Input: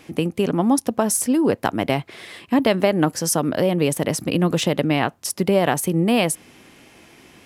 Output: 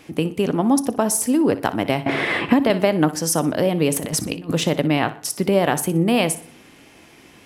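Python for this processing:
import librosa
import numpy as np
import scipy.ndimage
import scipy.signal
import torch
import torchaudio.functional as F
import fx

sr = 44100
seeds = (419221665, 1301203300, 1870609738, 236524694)

y = fx.over_compress(x, sr, threshold_db=-26.0, ratio=-0.5, at=(3.93, 4.52), fade=0.02)
y = fx.echo_feedback(y, sr, ms=61, feedback_pct=32, wet_db=-15.5)
y = fx.rev_fdn(y, sr, rt60_s=0.75, lf_ratio=1.05, hf_ratio=0.55, size_ms=20.0, drr_db=17.0)
y = fx.band_squash(y, sr, depth_pct=100, at=(2.06, 2.7))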